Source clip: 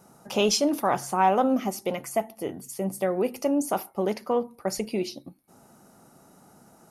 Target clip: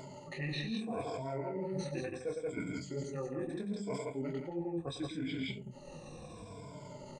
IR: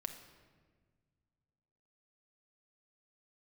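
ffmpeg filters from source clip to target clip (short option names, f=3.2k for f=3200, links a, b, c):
-af "afftfilt=real='re*pow(10,20/40*sin(2*PI*(1.7*log(max(b,1)*sr/1024/100)/log(2)-(-0.76)*(pts-256)/sr)))':imag='im*pow(10,20/40*sin(2*PI*(1.7*log(max(b,1)*sr/1024/100)/log(2)-(-0.76)*(pts-256)/sr)))':win_size=1024:overlap=0.75,lowpass=f=3.5k:p=1,bandreject=f=2.2k:w=14,flanger=delay=20:depth=2.7:speed=2.3,asetrate=42336,aresample=44100,flanger=delay=2.7:depth=9.6:regen=-49:speed=0.89:shape=triangular,asubboost=boost=3:cutoff=67,aecho=1:1:105|172:0.398|0.631,areverse,acompressor=threshold=-38dB:ratio=16,areverse,asetrate=33038,aresample=44100,atempo=1.33484,acompressor=mode=upward:threshold=-44dB:ratio=2.5,equalizer=f=2.4k:t=o:w=0.38:g=12,volume=3.5dB"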